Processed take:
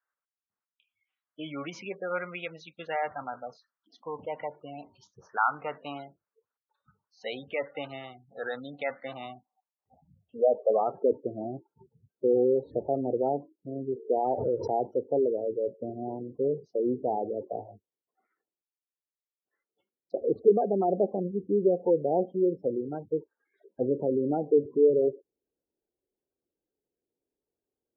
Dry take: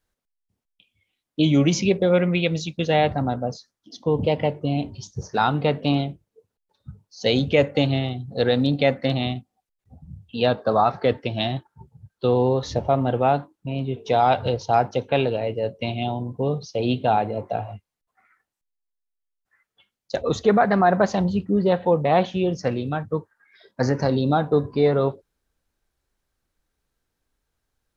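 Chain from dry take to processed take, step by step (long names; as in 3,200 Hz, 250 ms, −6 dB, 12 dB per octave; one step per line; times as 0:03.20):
band-pass filter sweep 1,300 Hz → 390 Hz, 0:09.05–0:11.07
gate on every frequency bin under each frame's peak −20 dB strong
0:14.15–0:14.80: background raised ahead of every attack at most 61 dB per second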